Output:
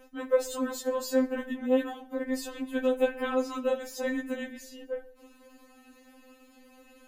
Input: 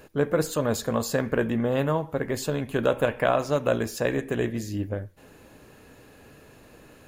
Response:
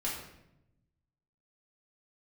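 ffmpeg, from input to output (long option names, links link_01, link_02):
-filter_complex "[0:a]asplit=2[link_01][link_02];[1:a]atrim=start_sample=2205,asetrate=28665,aresample=44100,adelay=49[link_03];[link_02][link_03]afir=irnorm=-1:irlink=0,volume=-27dB[link_04];[link_01][link_04]amix=inputs=2:normalize=0,afftfilt=real='re*3.46*eq(mod(b,12),0)':imag='im*3.46*eq(mod(b,12),0)':win_size=2048:overlap=0.75,volume=-3dB"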